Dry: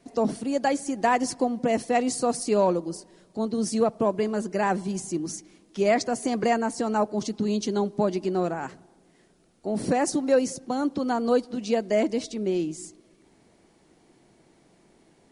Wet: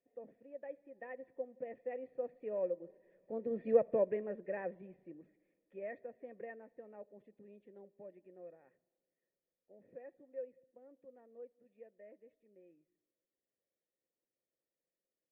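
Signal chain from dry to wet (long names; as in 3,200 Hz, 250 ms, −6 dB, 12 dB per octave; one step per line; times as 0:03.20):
source passing by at 0:03.78, 7 m/s, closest 2.5 metres
formant resonators in series e
level +4 dB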